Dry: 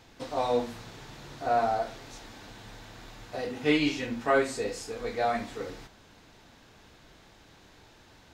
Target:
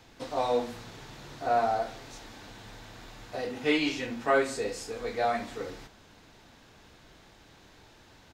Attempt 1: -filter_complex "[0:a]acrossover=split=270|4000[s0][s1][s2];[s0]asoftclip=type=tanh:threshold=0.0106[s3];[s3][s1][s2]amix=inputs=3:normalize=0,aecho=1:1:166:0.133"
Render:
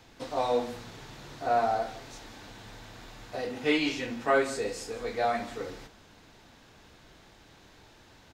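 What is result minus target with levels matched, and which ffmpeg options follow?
echo-to-direct +5 dB
-filter_complex "[0:a]acrossover=split=270|4000[s0][s1][s2];[s0]asoftclip=type=tanh:threshold=0.0106[s3];[s3][s1][s2]amix=inputs=3:normalize=0,aecho=1:1:166:0.0596"

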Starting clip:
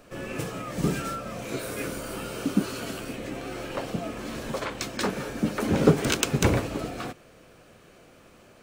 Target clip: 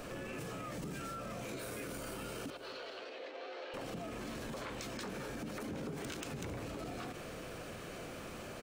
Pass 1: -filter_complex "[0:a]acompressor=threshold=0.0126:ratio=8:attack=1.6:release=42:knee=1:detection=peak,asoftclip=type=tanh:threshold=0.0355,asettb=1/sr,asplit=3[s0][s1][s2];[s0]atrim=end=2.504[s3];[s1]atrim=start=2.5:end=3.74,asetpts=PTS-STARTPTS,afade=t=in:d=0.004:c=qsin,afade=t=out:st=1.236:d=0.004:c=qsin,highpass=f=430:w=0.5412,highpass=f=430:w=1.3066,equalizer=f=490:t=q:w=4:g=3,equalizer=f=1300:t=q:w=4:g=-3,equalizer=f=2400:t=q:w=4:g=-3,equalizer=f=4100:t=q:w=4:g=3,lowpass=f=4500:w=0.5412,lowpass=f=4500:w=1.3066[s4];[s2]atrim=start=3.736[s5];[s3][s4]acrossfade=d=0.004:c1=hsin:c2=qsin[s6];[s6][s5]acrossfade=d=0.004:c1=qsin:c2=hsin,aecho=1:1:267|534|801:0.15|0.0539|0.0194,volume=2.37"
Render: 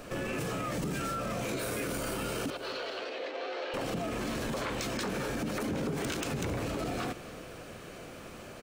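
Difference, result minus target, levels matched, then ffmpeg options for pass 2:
compression: peak gain reduction -9 dB
-filter_complex "[0:a]acompressor=threshold=0.00376:ratio=8:attack=1.6:release=42:knee=1:detection=peak,asoftclip=type=tanh:threshold=0.0355,asettb=1/sr,asplit=3[s0][s1][s2];[s0]atrim=end=2.504[s3];[s1]atrim=start=2.5:end=3.74,asetpts=PTS-STARTPTS,afade=t=in:d=0.004:c=qsin,afade=t=out:st=1.236:d=0.004:c=qsin,highpass=f=430:w=0.5412,highpass=f=430:w=1.3066,equalizer=f=490:t=q:w=4:g=3,equalizer=f=1300:t=q:w=4:g=-3,equalizer=f=2400:t=q:w=4:g=-3,equalizer=f=4100:t=q:w=4:g=3,lowpass=f=4500:w=0.5412,lowpass=f=4500:w=1.3066[s4];[s2]atrim=start=3.736[s5];[s3][s4]acrossfade=d=0.004:c1=hsin:c2=qsin[s6];[s6][s5]acrossfade=d=0.004:c1=qsin:c2=hsin,aecho=1:1:267|534|801:0.15|0.0539|0.0194,volume=2.37"

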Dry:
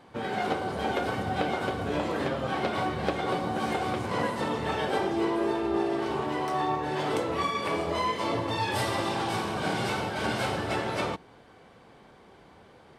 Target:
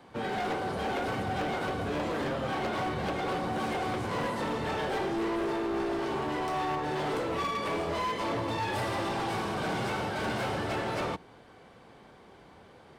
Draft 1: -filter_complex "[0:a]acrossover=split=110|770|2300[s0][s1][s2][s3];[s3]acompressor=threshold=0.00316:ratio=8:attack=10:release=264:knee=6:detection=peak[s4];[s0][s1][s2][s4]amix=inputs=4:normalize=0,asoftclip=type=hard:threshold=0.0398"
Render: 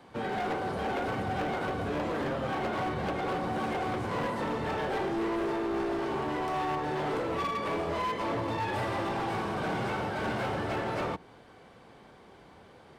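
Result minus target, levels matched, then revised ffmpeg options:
compression: peak gain reduction +8 dB
-filter_complex "[0:a]acrossover=split=110|770|2300[s0][s1][s2][s3];[s3]acompressor=threshold=0.00891:ratio=8:attack=10:release=264:knee=6:detection=peak[s4];[s0][s1][s2][s4]amix=inputs=4:normalize=0,asoftclip=type=hard:threshold=0.0398"

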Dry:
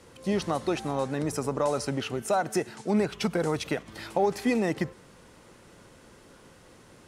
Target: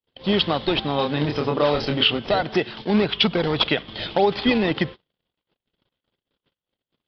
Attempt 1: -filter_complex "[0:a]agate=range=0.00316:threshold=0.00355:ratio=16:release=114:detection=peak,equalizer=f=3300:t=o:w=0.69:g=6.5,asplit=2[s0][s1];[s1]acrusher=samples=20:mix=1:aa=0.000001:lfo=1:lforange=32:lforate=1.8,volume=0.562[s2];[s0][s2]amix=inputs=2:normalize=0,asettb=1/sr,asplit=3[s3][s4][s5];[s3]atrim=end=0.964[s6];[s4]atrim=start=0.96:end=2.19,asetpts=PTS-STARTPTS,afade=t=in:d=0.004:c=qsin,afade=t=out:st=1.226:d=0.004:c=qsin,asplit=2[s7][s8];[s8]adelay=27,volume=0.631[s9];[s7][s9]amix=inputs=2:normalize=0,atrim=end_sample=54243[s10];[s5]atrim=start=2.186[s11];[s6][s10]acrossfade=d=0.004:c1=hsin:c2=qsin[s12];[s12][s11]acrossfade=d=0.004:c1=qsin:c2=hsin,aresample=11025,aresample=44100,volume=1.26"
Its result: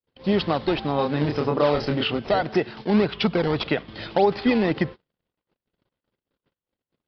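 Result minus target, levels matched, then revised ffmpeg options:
4 kHz band -7.0 dB
-filter_complex "[0:a]agate=range=0.00316:threshold=0.00355:ratio=16:release=114:detection=peak,equalizer=f=3300:t=o:w=0.69:g=18,asplit=2[s0][s1];[s1]acrusher=samples=20:mix=1:aa=0.000001:lfo=1:lforange=32:lforate=1.8,volume=0.562[s2];[s0][s2]amix=inputs=2:normalize=0,asettb=1/sr,asplit=3[s3][s4][s5];[s3]atrim=end=0.964[s6];[s4]atrim=start=0.96:end=2.19,asetpts=PTS-STARTPTS,afade=t=in:d=0.004:c=qsin,afade=t=out:st=1.226:d=0.004:c=qsin,asplit=2[s7][s8];[s8]adelay=27,volume=0.631[s9];[s7][s9]amix=inputs=2:normalize=0,atrim=end_sample=54243[s10];[s5]atrim=start=2.186[s11];[s6][s10]acrossfade=d=0.004:c1=hsin:c2=qsin[s12];[s12][s11]acrossfade=d=0.004:c1=qsin:c2=hsin,aresample=11025,aresample=44100,volume=1.26"

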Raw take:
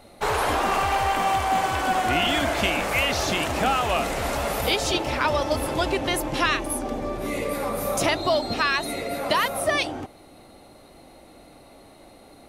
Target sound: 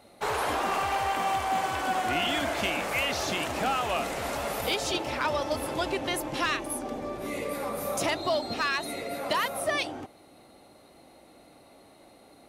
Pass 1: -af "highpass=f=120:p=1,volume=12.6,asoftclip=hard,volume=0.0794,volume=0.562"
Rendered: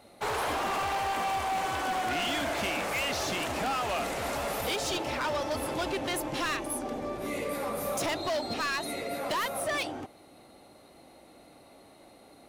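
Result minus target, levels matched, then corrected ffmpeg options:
overload inside the chain: distortion +15 dB
-af "highpass=f=120:p=1,volume=5.31,asoftclip=hard,volume=0.188,volume=0.562"

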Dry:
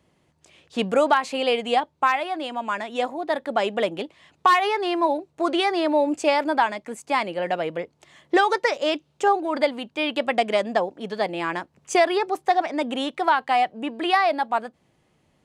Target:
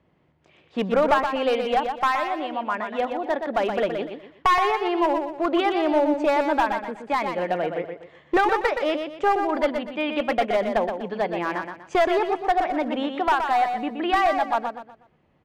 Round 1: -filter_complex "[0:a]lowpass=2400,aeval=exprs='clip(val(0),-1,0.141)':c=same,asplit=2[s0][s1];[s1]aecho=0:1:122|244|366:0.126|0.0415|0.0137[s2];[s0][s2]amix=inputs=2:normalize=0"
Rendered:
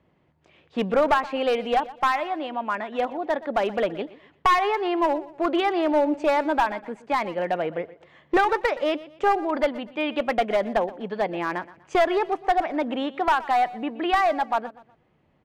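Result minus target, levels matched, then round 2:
echo-to-direct -11.5 dB
-filter_complex "[0:a]lowpass=2400,aeval=exprs='clip(val(0),-1,0.141)':c=same,asplit=2[s0][s1];[s1]aecho=0:1:122|244|366|488:0.473|0.156|0.0515|0.017[s2];[s0][s2]amix=inputs=2:normalize=0"

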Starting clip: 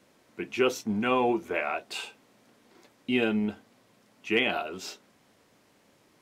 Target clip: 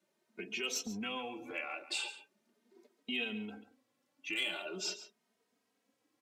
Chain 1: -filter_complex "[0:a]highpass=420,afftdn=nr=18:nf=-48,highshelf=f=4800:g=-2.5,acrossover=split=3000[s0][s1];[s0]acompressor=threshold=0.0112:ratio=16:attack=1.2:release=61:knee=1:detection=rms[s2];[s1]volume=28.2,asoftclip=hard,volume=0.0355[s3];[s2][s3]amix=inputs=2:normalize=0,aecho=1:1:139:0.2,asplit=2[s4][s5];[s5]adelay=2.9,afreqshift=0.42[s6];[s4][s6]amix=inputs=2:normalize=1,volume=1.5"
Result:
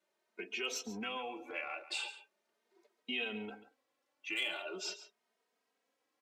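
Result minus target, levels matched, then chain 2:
8 kHz band -2.5 dB; 250 Hz band -2.0 dB
-filter_complex "[0:a]highpass=180,afftdn=nr=18:nf=-48,highshelf=f=4800:g=3.5,acrossover=split=3000[s0][s1];[s0]acompressor=threshold=0.0112:ratio=16:attack=1.2:release=61:knee=1:detection=rms[s2];[s1]volume=28.2,asoftclip=hard,volume=0.0355[s3];[s2][s3]amix=inputs=2:normalize=0,aecho=1:1:139:0.2,asplit=2[s4][s5];[s5]adelay=2.9,afreqshift=0.42[s6];[s4][s6]amix=inputs=2:normalize=1,volume=1.5"

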